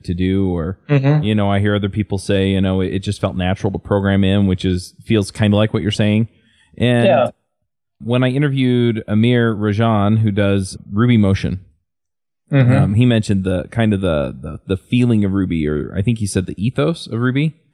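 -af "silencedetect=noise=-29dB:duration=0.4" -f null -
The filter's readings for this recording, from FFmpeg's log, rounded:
silence_start: 6.26
silence_end: 6.78 | silence_duration: 0.52
silence_start: 7.30
silence_end: 8.01 | silence_duration: 0.71
silence_start: 11.58
silence_end: 12.52 | silence_duration: 0.94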